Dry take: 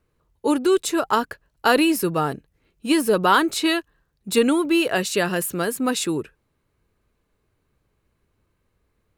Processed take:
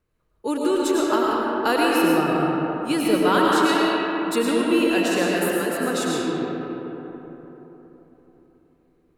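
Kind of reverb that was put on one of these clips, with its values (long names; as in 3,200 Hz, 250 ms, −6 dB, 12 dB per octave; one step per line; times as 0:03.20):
comb and all-pass reverb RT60 4 s, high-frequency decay 0.4×, pre-delay 65 ms, DRR −4.5 dB
level −5.5 dB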